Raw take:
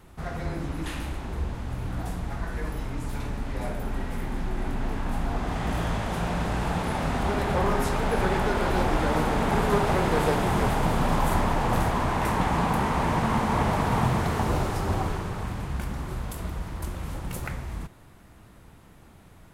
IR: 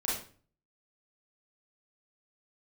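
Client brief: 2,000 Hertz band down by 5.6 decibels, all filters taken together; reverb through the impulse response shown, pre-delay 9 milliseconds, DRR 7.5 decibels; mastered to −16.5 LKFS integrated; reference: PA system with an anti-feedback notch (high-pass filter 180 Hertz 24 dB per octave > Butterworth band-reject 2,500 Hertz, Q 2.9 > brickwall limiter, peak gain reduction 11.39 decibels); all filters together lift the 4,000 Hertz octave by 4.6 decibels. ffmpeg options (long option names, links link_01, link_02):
-filter_complex "[0:a]equalizer=frequency=2000:width_type=o:gain=-8,equalizer=frequency=4000:width_type=o:gain=9,asplit=2[link_01][link_02];[1:a]atrim=start_sample=2205,adelay=9[link_03];[link_02][link_03]afir=irnorm=-1:irlink=0,volume=-13.5dB[link_04];[link_01][link_04]amix=inputs=2:normalize=0,highpass=frequency=180:width=0.5412,highpass=frequency=180:width=1.3066,asuperstop=centerf=2500:order=8:qfactor=2.9,volume=17dB,alimiter=limit=-6dB:level=0:latency=1"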